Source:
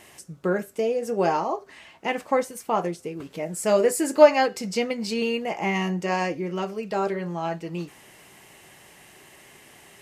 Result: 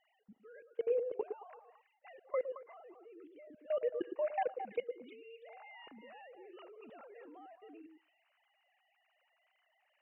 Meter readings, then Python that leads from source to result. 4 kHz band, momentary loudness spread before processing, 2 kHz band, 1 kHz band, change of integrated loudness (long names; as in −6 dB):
−27.0 dB, 13 LU, −23.0 dB, −19.0 dB, −14.0 dB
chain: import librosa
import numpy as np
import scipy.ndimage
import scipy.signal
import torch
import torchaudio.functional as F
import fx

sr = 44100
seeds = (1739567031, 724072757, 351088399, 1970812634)

y = fx.sine_speech(x, sr)
y = fx.level_steps(y, sr, step_db=23)
y = fx.echo_stepped(y, sr, ms=110, hz=370.0, octaves=1.4, feedback_pct=70, wet_db=-4.5)
y = y * 10.0 ** (-8.5 / 20.0)